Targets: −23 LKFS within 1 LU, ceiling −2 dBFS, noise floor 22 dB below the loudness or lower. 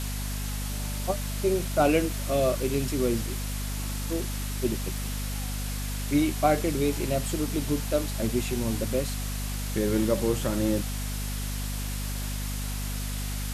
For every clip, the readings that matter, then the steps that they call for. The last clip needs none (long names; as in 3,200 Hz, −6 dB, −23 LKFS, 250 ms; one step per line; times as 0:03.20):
mains hum 50 Hz; hum harmonics up to 250 Hz; level of the hum −29 dBFS; background noise floor −32 dBFS; target noise floor −51 dBFS; integrated loudness −28.5 LKFS; sample peak −9.5 dBFS; target loudness −23.0 LKFS
→ mains-hum notches 50/100/150/200/250 Hz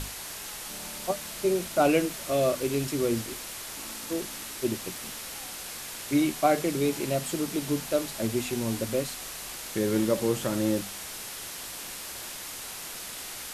mains hum none found; background noise floor −39 dBFS; target noise floor −52 dBFS
→ broadband denoise 13 dB, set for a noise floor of −39 dBFS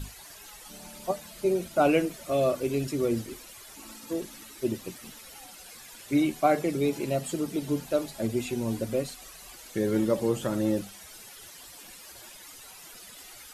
background noise floor −48 dBFS; target noise floor −51 dBFS
→ broadband denoise 6 dB, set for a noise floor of −48 dBFS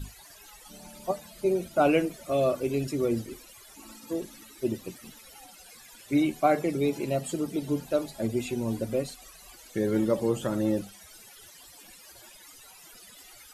background noise floor −51 dBFS; integrated loudness −28.5 LKFS; sample peak −10.5 dBFS; target loudness −23.0 LKFS
→ level +5.5 dB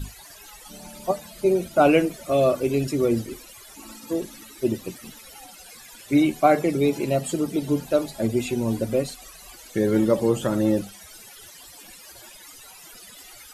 integrated loudness −23.0 LKFS; sample peak −5.0 dBFS; background noise floor −46 dBFS